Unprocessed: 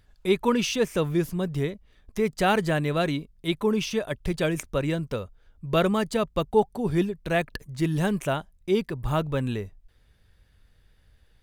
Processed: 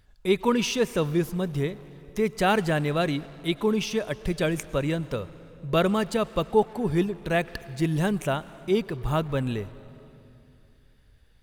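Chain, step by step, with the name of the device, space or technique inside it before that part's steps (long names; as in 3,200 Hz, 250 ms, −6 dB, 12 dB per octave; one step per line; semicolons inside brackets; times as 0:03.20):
saturated reverb return (on a send at −13.5 dB: convolution reverb RT60 2.5 s, pre-delay 95 ms + soft clipping −27.5 dBFS, distortion −9 dB)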